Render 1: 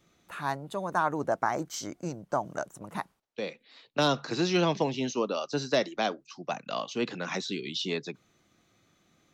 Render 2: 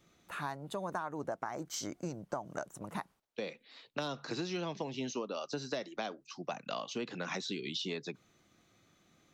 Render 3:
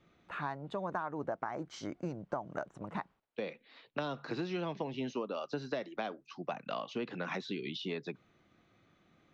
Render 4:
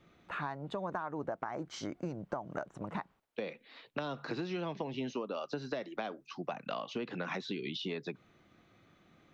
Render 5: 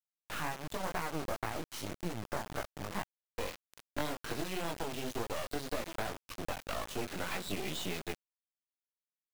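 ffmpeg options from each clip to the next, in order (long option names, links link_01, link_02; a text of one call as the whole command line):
ffmpeg -i in.wav -af "acompressor=threshold=-33dB:ratio=10,volume=-1dB" out.wav
ffmpeg -i in.wav -af "lowpass=2900,volume=1dB" out.wav
ffmpeg -i in.wav -af "acompressor=threshold=-40dB:ratio=2,volume=3.5dB" out.wav
ffmpeg -i in.wav -af "lowshelf=frequency=180:gain=-3.5,flanger=delay=17:depth=4.1:speed=1.9,acrusher=bits=5:dc=4:mix=0:aa=0.000001,volume=7.5dB" out.wav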